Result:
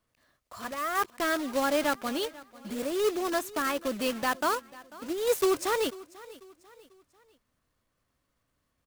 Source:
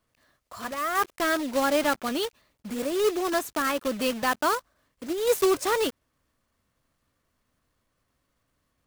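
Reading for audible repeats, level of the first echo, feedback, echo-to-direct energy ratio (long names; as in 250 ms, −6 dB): 2, −20.0 dB, 41%, −19.0 dB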